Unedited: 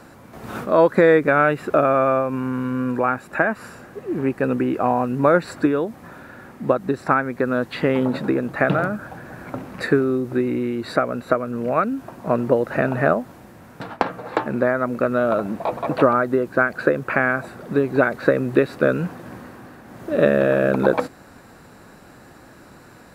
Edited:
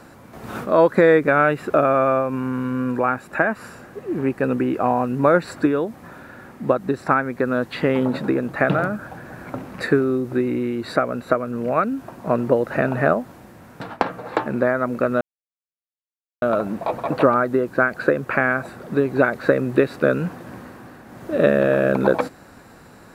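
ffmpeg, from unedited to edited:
-filter_complex "[0:a]asplit=2[a][b];[a]atrim=end=15.21,asetpts=PTS-STARTPTS,afade=t=out:st=15.206:d=0.004:c=hsin,apad=pad_dur=1.21[c];[b]atrim=start=15.21,asetpts=PTS-STARTPTS,afade=t=in:d=0.004:c=hsin[d];[c][d]concat=n=2:v=0:a=1"

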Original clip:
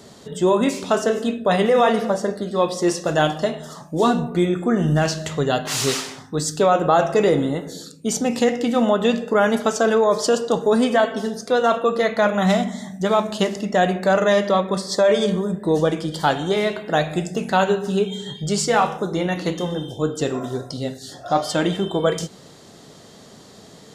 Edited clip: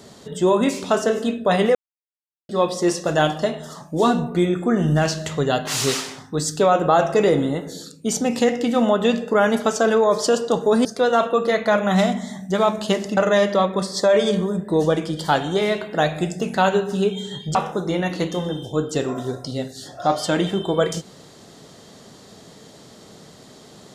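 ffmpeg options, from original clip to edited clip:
-filter_complex "[0:a]asplit=6[a][b][c][d][e][f];[a]atrim=end=1.75,asetpts=PTS-STARTPTS,afade=t=out:st=1.746:d=0.004:c=hsin[g];[b]atrim=start=1.75:end=2.49,asetpts=PTS-STARTPTS,volume=0[h];[c]atrim=start=2.49:end=10.852,asetpts=PTS-STARTPTS,afade=t=in:d=0.004:c=hsin[i];[d]atrim=start=11.358:end=13.682[j];[e]atrim=start=14.118:end=18.502[k];[f]atrim=start=18.808[l];[g][h][i]concat=n=3:v=0:a=1[m];[m][j]acrossfade=d=0.004:c1=hsin:c2=hsin[n];[n][k]acrossfade=d=0.004:c1=hsin:c2=hsin[o];[o][l]acrossfade=d=0.004:c1=hsin:c2=hsin"

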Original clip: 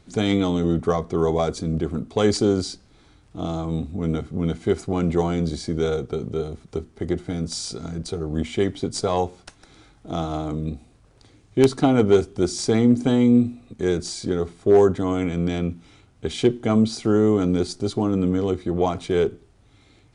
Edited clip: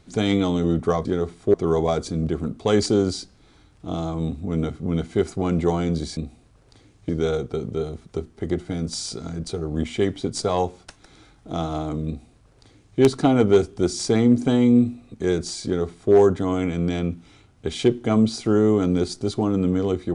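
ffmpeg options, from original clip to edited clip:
-filter_complex "[0:a]asplit=5[a][b][c][d][e];[a]atrim=end=1.052[f];[b]atrim=start=14.238:end=14.732[g];[c]atrim=start=1.048:end=5.682[h];[d]atrim=start=10.658:end=11.582[i];[e]atrim=start=5.678[j];[f][g]acrossfade=d=0.004:c1=hsin:c2=hsin[k];[k][h]acrossfade=d=0.004:c1=hsin:c2=hsin[l];[l][i]acrossfade=d=0.004:c1=hsin:c2=hsin[m];[m][j]acrossfade=d=0.004:c1=hsin:c2=hsin"

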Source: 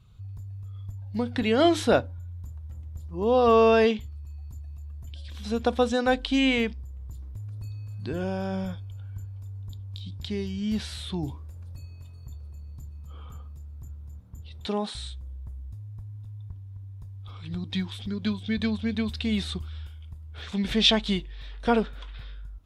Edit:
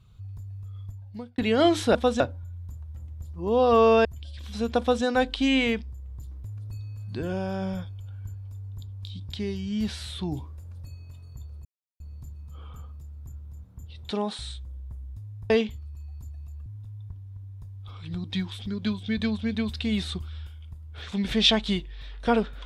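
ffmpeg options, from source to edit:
-filter_complex "[0:a]asplit=8[a][b][c][d][e][f][g][h];[a]atrim=end=1.38,asetpts=PTS-STARTPTS,afade=t=out:st=0.81:d=0.57[i];[b]atrim=start=1.38:end=1.952,asetpts=PTS-STARTPTS,afade=t=in:d=0.004:c=hsin[j];[c]atrim=start=5.698:end=5.952[k];[d]atrim=start=1.948:end=3.802[l];[e]atrim=start=4.958:end=12.56,asetpts=PTS-STARTPTS,afade=t=out:st=7.598:d=0.004:c=hsin,apad=pad_dur=0.35[m];[f]atrim=start=12.56:end=16.062,asetpts=PTS-STARTPTS,afade=t=in:d=0.004:c=hsin[n];[g]atrim=start=3.798:end=4.962[o];[h]atrim=start=16.058[p];[i][j]concat=n=2:v=0:a=1[q];[q][k]acrossfade=d=0.004:c1=hsin:c2=hsin[r];[r][l]acrossfade=d=0.004:c1=hsin:c2=hsin[s];[m][n]concat=n=2:v=0:a=1[t];[s][t]acrossfade=d=0.004:c1=hsin:c2=hsin[u];[u][o]acrossfade=d=0.004:c1=hsin:c2=hsin[v];[v][p]acrossfade=d=0.004:c1=hsin:c2=hsin"

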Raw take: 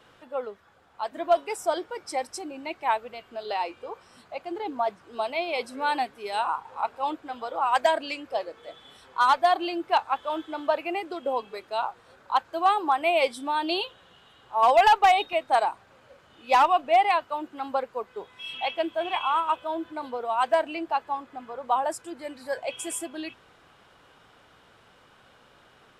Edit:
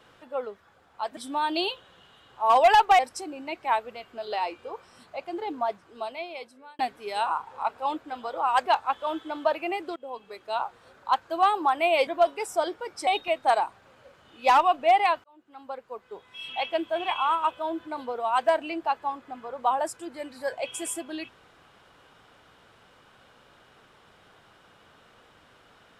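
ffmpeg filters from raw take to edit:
-filter_complex "[0:a]asplit=9[a][b][c][d][e][f][g][h][i];[a]atrim=end=1.172[j];[b]atrim=start=13.298:end=15.122[k];[c]atrim=start=2.168:end=5.97,asetpts=PTS-STARTPTS,afade=t=out:st=2.492:d=1.31[l];[d]atrim=start=5.97:end=7.842,asetpts=PTS-STARTPTS,afade=t=in:d=0.004:c=hsin[m];[e]atrim=start=9.888:end=11.19,asetpts=PTS-STARTPTS,afade=t=out:st=1.298:d=0.004:c=hsin:silence=0.11885[n];[f]atrim=start=11.19:end=13.302,asetpts=PTS-STARTPTS,afade=t=in:d=0.67:silence=0.11885[o];[g]atrim=start=1.168:end=2.172[p];[h]atrim=start=15.118:end=17.29,asetpts=PTS-STARTPTS,afade=t=out:st=2.168:d=0.004:c=hsin[q];[i]atrim=start=17.29,asetpts=PTS-STARTPTS,afade=t=in:d=1.47[r];[j][k]acrossfade=d=0.004:c1=hsin:c2=hsin[s];[l][m]concat=n=2:v=0:a=1[t];[s][t]acrossfade=d=0.004:c1=hsin:c2=hsin[u];[n][o]concat=n=2:v=0:a=1[v];[u][v]acrossfade=d=0.004:c1=hsin:c2=hsin[w];[w][p]acrossfade=d=0.004:c1=hsin:c2=hsin[x];[q][r]concat=n=2:v=0:a=1[y];[x][y]acrossfade=d=0.004:c1=hsin:c2=hsin"

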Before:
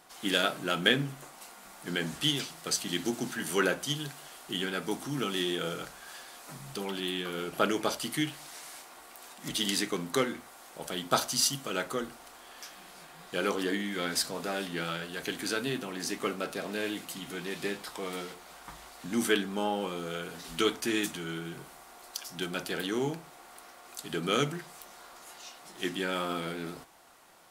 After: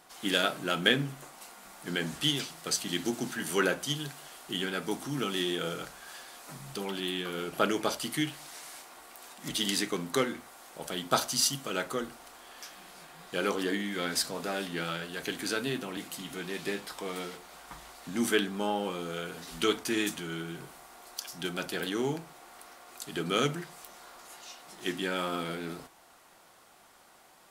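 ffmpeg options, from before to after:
-filter_complex "[0:a]asplit=2[a][b];[a]atrim=end=15.972[c];[b]atrim=start=16.938[d];[c][d]acrossfade=d=0.004:c1=hsin:c2=hsin"

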